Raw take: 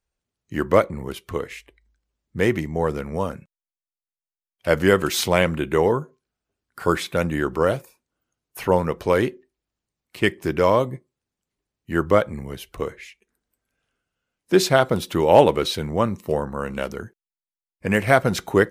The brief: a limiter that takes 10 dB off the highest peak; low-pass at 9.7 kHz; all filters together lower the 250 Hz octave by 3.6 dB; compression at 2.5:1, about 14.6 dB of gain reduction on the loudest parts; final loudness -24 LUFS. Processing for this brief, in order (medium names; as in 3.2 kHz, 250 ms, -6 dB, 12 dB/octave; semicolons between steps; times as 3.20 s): low-pass 9.7 kHz; peaking EQ 250 Hz -5.5 dB; compression 2.5:1, threshold -32 dBFS; trim +13 dB; peak limiter -10.5 dBFS